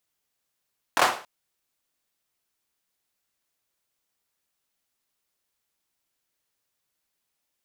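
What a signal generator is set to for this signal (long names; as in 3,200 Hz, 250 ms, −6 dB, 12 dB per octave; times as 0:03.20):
synth clap length 0.28 s, bursts 3, apart 23 ms, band 850 Hz, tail 0.40 s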